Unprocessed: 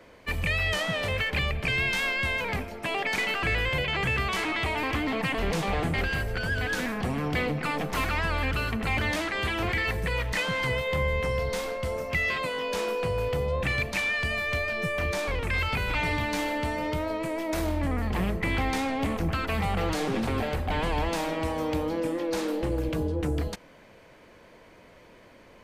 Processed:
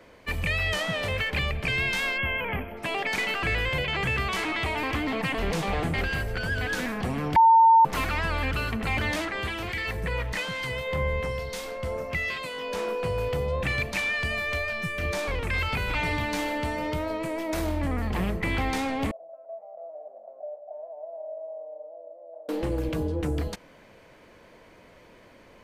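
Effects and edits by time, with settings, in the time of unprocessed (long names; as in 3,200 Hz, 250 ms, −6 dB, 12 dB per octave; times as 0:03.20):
0:02.18–0:02.77: gain on a spectral selection 3,400–11,000 Hz −26 dB
0:07.36–0:07.85: beep over 905 Hz −12.5 dBFS
0:09.25–0:13.04: two-band tremolo in antiphase 1.1 Hz, depth 50%, crossover 2,300 Hz
0:14.52–0:15.03: parametric band 140 Hz → 1,000 Hz −13 dB
0:19.11–0:22.49: flat-topped band-pass 630 Hz, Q 6.6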